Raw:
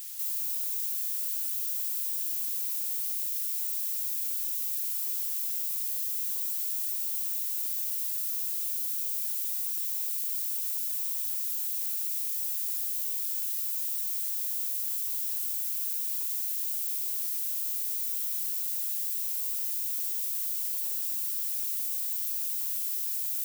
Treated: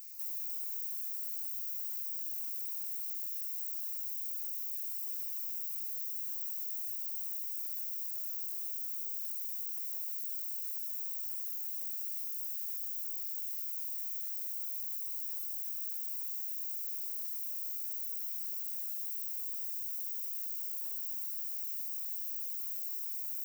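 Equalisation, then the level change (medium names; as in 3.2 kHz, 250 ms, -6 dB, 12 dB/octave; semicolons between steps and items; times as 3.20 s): peaking EQ 3.5 kHz -7 dB 1.8 oct; static phaser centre 2.2 kHz, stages 8; -5.5 dB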